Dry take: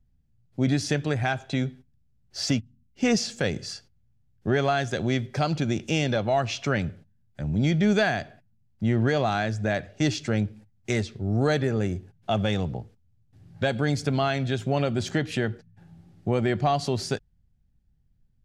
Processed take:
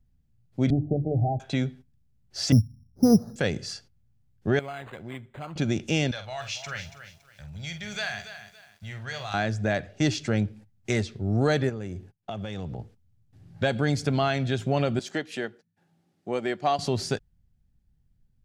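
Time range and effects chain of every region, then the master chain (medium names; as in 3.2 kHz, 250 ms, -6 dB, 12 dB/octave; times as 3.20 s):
0.70–1.40 s: Chebyshev low-pass 810 Hz, order 10 + bass shelf 100 Hz +11 dB + hum notches 50/100/150/200/250/300/350 Hz
2.52–3.36 s: steep low-pass 1.3 kHz 48 dB/octave + peaking EQ 100 Hz +14 dB 1.9 oct + careless resampling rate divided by 8×, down filtered, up hold
4.59–5.56 s: pre-emphasis filter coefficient 0.8 + decimation joined by straight lines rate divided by 8×
6.11–9.34 s: amplifier tone stack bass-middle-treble 10-0-10 + doubling 48 ms -9 dB + bit-crushed delay 281 ms, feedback 35%, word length 9-bit, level -11 dB
11.69–12.79 s: expander -48 dBFS + compression 5:1, threshold -31 dBFS
14.99–16.79 s: high-pass 270 Hz + treble shelf 4.6 kHz +3.5 dB + upward expansion, over -38 dBFS
whole clip: none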